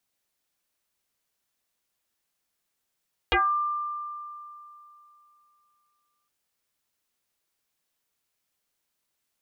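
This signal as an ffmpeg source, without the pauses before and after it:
-f lavfi -i "aevalsrc='0.126*pow(10,-3*t/2.99)*sin(2*PI*1190*t+6.1*pow(10,-3*t/0.25)*sin(2*PI*0.35*1190*t))':d=2.96:s=44100"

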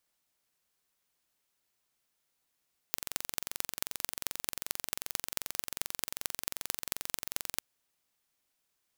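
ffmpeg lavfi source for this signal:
-f lavfi -i "aevalsrc='0.75*eq(mod(n,1951),0)*(0.5+0.5*eq(mod(n,9755),0))':d=4.66:s=44100"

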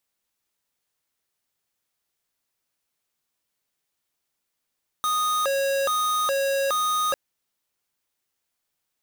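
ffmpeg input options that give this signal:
-f lavfi -i "aevalsrc='0.0668*(2*lt(mod((894.5*t+345.5/1.2*(0.5-abs(mod(1.2*t,1)-0.5))),1),0.5)-1)':d=2.1:s=44100"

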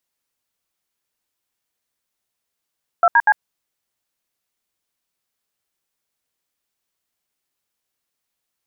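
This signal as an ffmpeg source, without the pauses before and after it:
-f lavfi -i "aevalsrc='0.251*clip(min(mod(t,0.121),0.05-mod(t,0.121))/0.002,0,1)*(eq(floor(t/0.121),0)*(sin(2*PI*697*mod(t,0.121))+sin(2*PI*1336*mod(t,0.121)))+eq(floor(t/0.121),1)*(sin(2*PI*941*mod(t,0.121))+sin(2*PI*1633*mod(t,0.121)))+eq(floor(t/0.121),2)*(sin(2*PI*852*mod(t,0.121))+sin(2*PI*1633*mod(t,0.121))))':d=0.363:s=44100"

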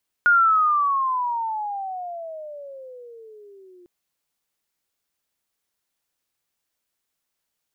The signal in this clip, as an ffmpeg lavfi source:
-f lavfi -i "aevalsrc='pow(10,(-12-34*t/3.6)/20)*sin(2*PI*1440*3.6/(-24.5*log(2)/12)*(exp(-24.5*log(2)/12*t/3.6)-1))':d=3.6:s=44100"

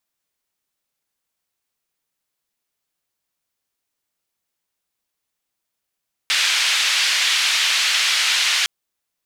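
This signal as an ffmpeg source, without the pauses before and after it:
-f lavfi -i "anoisesrc=c=white:d=2.36:r=44100:seed=1,highpass=f=2200,lowpass=f=3600,volume=-2.6dB"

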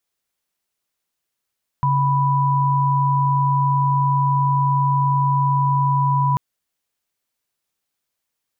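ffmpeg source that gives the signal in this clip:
-f lavfi -i "aevalsrc='0.133*(sin(2*PI*138.59*t)+sin(2*PI*987.77*t))':d=4.54:s=44100"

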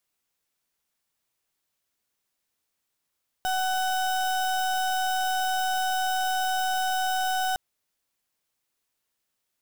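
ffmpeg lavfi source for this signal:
-f lavfi -i "aevalsrc='0.0501*(2*lt(mod(749*t,1),0.34)-1)':d=4.11:s=44100"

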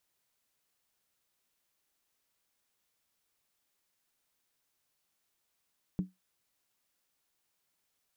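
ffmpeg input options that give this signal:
-f lavfi -i "aevalsrc='0.0631*pow(10,-3*t/0.18)*sin(2*PI*185*t)+0.0168*pow(10,-3*t/0.143)*sin(2*PI*294.9*t)+0.00447*pow(10,-3*t/0.123)*sin(2*PI*395.2*t)+0.00119*pow(10,-3*t/0.119)*sin(2*PI*424.8*t)+0.000316*pow(10,-3*t/0.111)*sin(2*PI*490.8*t)':d=0.63:s=44100"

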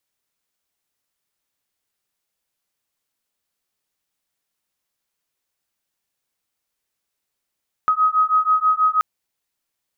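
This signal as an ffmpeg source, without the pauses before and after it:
-f lavfi -i "aevalsrc='0.133*(sin(2*PI*1260*t)+sin(2*PI*1266.2*t))':d=1.13:s=44100"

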